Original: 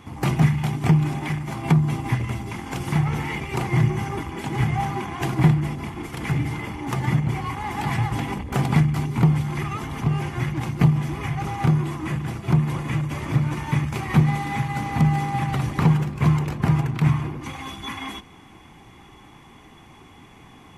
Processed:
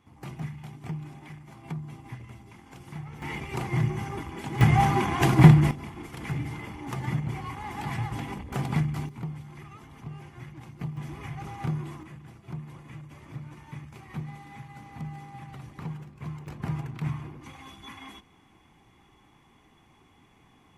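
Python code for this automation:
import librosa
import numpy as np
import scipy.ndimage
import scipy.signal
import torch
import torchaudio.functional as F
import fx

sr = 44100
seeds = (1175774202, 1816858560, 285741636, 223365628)

y = fx.gain(x, sr, db=fx.steps((0.0, -18.0), (3.22, -6.5), (4.61, 3.5), (5.71, -8.0), (9.09, -18.0), (10.97, -11.0), (12.03, -19.0), (16.47, -12.0)))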